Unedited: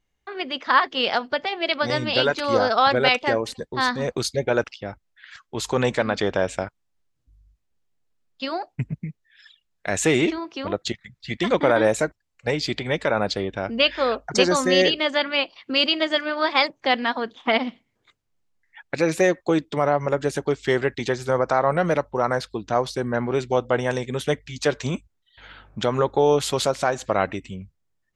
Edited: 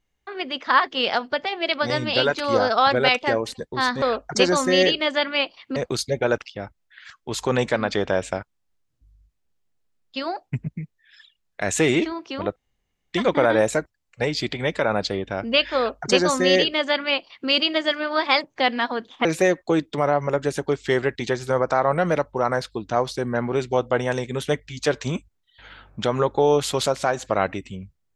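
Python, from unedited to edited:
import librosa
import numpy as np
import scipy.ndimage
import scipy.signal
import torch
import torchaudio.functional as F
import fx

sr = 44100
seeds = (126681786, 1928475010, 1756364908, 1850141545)

y = fx.edit(x, sr, fx.room_tone_fill(start_s=10.82, length_s=0.57),
    fx.duplicate(start_s=14.01, length_s=1.74, to_s=4.02),
    fx.cut(start_s=17.51, length_s=1.53), tone=tone)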